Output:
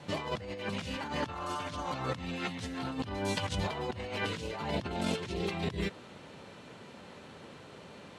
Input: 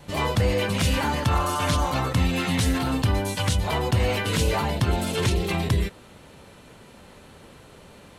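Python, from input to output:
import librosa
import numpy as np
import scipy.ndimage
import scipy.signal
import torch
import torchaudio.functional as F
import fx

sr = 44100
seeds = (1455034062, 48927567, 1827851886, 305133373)

y = fx.bandpass_edges(x, sr, low_hz=120.0, high_hz=6200.0)
y = fx.over_compress(y, sr, threshold_db=-29.0, ratio=-0.5)
y = y * librosa.db_to_amplitude(-5.5)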